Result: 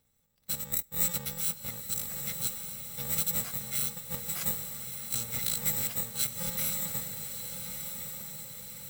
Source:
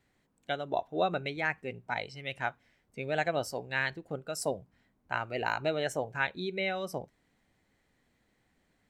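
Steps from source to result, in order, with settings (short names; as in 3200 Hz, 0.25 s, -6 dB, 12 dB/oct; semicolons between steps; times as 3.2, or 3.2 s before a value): FFT order left unsorted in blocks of 128 samples; formant shift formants +6 st; diffused feedback echo 1.255 s, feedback 53%, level -6.5 dB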